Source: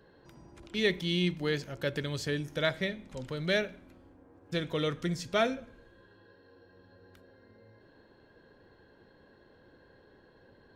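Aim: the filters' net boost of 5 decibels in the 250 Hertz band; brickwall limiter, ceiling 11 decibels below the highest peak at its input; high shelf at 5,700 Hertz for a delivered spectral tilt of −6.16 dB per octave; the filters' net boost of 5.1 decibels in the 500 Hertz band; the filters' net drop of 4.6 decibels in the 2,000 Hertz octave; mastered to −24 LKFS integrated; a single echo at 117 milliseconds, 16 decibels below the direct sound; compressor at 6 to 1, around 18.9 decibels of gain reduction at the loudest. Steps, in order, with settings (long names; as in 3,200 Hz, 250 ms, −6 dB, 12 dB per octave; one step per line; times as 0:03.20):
parametric band 250 Hz +6 dB
parametric band 500 Hz +5 dB
parametric band 2,000 Hz −5 dB
high-shelf EQ 5,700 Hz −8.5 dB
downward compressor 6 to 1, threshold −40 dBFS
brickwall limiter −39 dBFS
single-tap delay 117 ms −16 dB
level +26.5 dB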